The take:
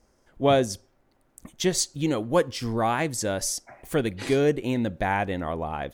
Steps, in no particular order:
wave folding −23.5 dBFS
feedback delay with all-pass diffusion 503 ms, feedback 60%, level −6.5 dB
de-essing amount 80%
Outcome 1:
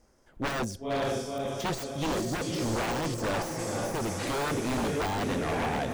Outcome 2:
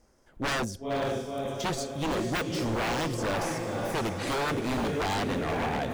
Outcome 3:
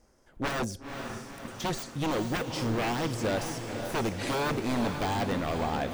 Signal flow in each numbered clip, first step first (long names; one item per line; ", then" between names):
feedback delay with all-pass diffusion, then wave folding, then de-essing
de-essing, then feedback delay with all-pass diffusion, then wave folding
wave folding, then de-essing, then feedback delay with all-pass diffusion